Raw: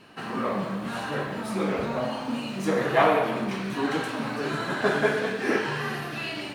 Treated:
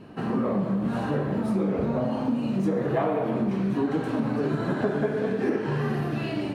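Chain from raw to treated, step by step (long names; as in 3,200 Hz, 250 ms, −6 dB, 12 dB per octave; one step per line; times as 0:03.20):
tilt shelving filter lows +9.5 dB, about 840 Hz
downward compressor, threshold −24 dBFS, peak gain reduction 11.5 dB
level +2 dB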